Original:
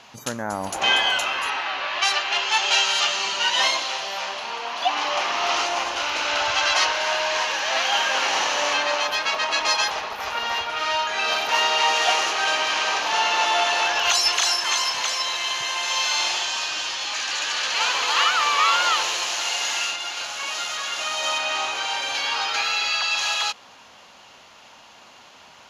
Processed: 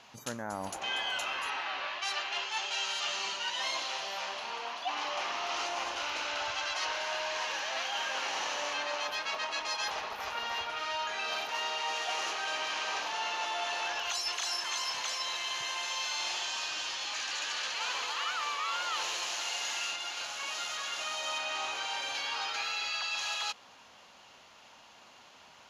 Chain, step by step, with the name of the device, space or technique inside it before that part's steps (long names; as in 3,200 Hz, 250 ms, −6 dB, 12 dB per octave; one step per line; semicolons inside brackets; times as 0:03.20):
compression on the reversed sound (reversed playback; downward compressor, threshold −23 dBFS, peak gain reduction 8.5 dB; reversed playback)
level −8 dB